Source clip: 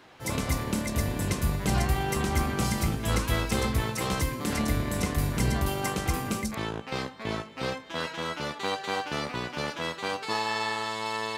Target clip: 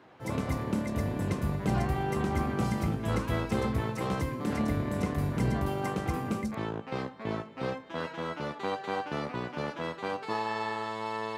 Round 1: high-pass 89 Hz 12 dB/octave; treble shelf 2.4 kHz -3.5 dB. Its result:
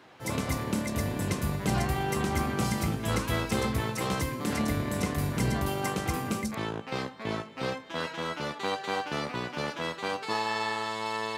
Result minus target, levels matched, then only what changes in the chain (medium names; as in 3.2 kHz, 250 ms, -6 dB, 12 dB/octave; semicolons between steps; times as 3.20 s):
4 kHz band +6.5 dB
change: treble shelf 2.4 kHz -15 dB